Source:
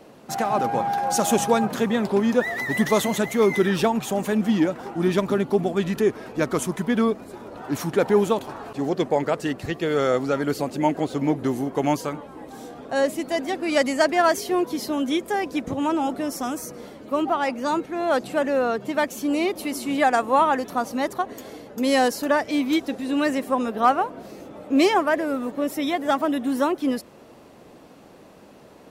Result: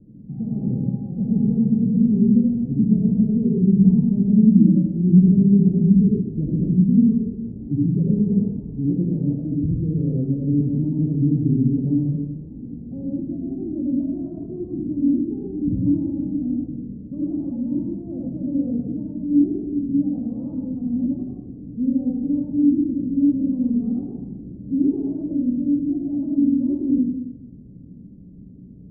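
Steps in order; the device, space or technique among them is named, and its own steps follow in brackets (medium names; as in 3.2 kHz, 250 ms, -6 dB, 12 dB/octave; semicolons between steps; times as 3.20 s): club heard from the street (peak limiter -13.5 dBFS, peak gain reduction 7 dB; low-pass 210 Hz 24 dB/octave; reverberation RT60 0.90 s, pre-delay 59 ms, DRR -3.5 dB); trim +9 dB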